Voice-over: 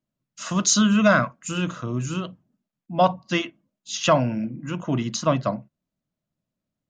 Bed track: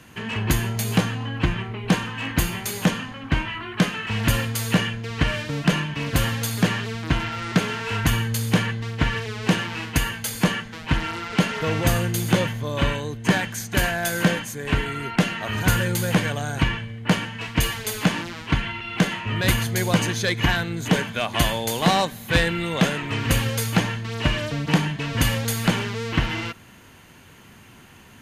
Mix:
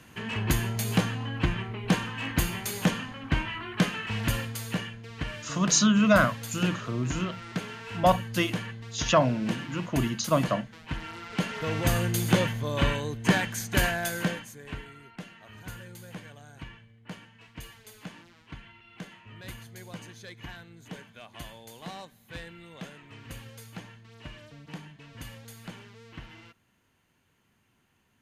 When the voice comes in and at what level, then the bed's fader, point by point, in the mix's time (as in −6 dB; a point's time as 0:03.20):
5.05 s, −3.0 dB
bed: 0:03.97 −4.5 dB
0:04.91 −12.5 dB
0:10.96 −12.5 dB
0:12.12 −3 dB
0:13.86 −3 dB
0:15.12 −22 dB